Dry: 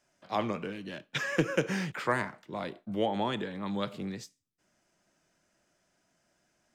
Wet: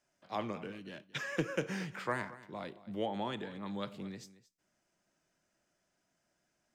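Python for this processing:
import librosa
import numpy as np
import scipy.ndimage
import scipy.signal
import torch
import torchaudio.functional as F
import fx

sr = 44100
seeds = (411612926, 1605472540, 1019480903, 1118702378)

y = x + 10.0 ** (-17.5 / 20.0) * np.pad(x, (int(225 * sr / 1000.0), 0))[:len(x)]
y = F.gain(torch.from_numpy(y), -6.5).numpy()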